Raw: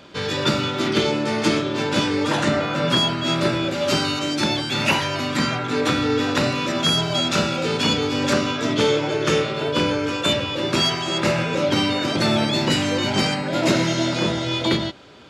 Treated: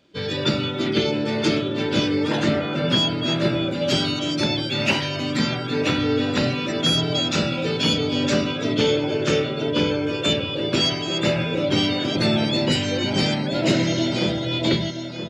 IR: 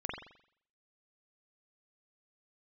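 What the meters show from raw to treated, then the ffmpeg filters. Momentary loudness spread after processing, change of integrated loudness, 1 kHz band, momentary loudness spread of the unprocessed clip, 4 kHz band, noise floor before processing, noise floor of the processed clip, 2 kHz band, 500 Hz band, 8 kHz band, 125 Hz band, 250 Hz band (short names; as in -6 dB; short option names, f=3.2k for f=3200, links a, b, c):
3 LU, -1.0 dB, -5.5 dB, 3 LU, -0.5 dB, -27 dBFS, -28 dBFS, -3.0 dB, -1.0 dB, -3.5 dB, +0.5 dB, 0.0 dB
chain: -af "afftdn=nr=14:nf=-31,equalizer=f=1.1k:t=o:w=1.1:g=-7.5,aecho=1:1:974:0.376"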